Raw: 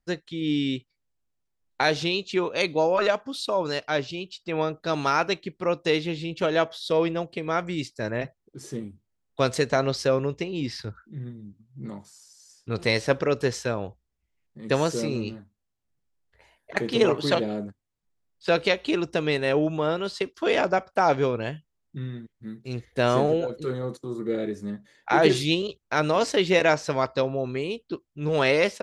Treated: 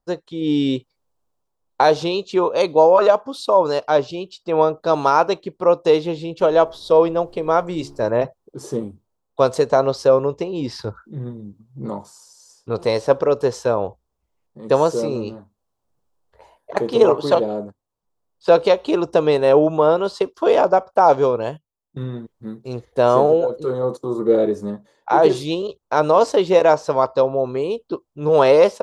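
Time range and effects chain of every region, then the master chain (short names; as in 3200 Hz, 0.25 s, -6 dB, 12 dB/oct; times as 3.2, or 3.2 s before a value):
6.39–8.06 de-hum 70.16 Hz, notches 6 + added noise brown -51 dBFS
21.09–22.03 notches 50/100 Hz + gate -39 dBFS, range -14 dB + high shelf 5600 Hz +9 dB
whole clip: graphic EQ 500/1000/2000 Hz +8/+11/-9 dB; AGC gain up to 6.5 dB; gain -1 dB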